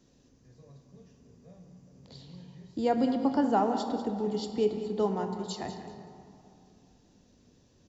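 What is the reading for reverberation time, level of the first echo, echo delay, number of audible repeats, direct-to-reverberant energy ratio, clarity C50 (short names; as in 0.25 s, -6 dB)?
2.7 s, -12.0 dB, 0.193 s, 2, 5.0 dB, 6.5 dB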